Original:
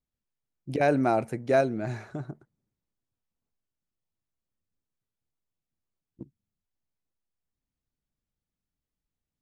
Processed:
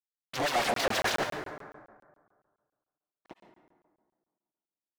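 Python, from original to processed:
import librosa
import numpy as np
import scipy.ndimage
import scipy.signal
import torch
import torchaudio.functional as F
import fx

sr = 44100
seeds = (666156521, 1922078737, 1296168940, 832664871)

y = fx.over_compress(x, sr, threshold_db=-27.0, ratio=-0.5)
y = fx.leveller(y, sr, passes=1)
y = fx.fuzz(y, sr, gain_db=49.0, gate_db=-47.0)
y = fx.filter_lfo_bandpass(y, sr, shape='sine', hz=9.0, low_hz=610.0, high_hz=5200.0, q=1.5)
y = np.clip(10.0 ** (29.5 / 20.0) * y, -1.0, 1.0) / 10.0 ** (29.5 / 20.0)
y = fx.stretch_grains(y, sr, factor=0.53, grain_ms=191.0)
y = fx.rev_plate(y, sr, seeds[0], rt60_s=1.7, hf_ratio=0.45, predelay_ms=90, drr_db=5.5)
y = fx.buffer_crackle(y, sr, first_s=0.74, period_s=0.14, block=1024, kind='zero')
y = y * 10.0 ** (5.0 / 20.0)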